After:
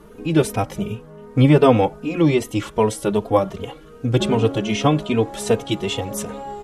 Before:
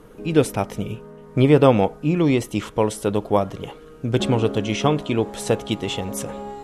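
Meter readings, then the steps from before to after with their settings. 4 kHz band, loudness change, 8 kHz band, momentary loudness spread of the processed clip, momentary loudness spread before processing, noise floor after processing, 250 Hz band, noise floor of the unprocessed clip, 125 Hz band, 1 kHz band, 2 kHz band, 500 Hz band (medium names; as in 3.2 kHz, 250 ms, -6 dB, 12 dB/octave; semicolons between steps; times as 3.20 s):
+1.5 dB, +1.5 dB, +1.5 dB, 13 LU, 14 LU, -43 dBFS, +1.5 dB, -44 dBFS, +2.0 dB, +2.0 dB, +1.5 dB, +1.0 dB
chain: endless flanger 3 ms +2.6 Hz; trim +4.5 dB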